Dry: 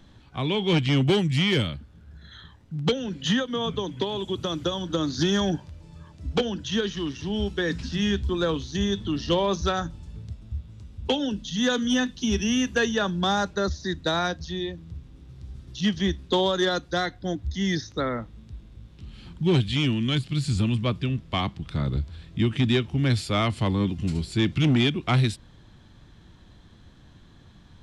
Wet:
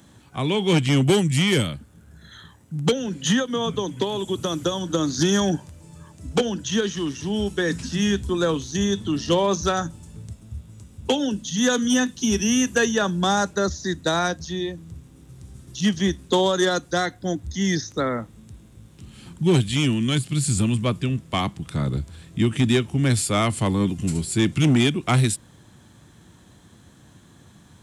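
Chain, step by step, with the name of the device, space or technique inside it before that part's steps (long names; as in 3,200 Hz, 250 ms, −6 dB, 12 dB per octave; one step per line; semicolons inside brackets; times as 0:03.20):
budget condenser microphone (high-pass filter 99 Hz; high shelf with overshoot 6,100 Hz +11.5 dB, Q 1.5)
level +3.5 dB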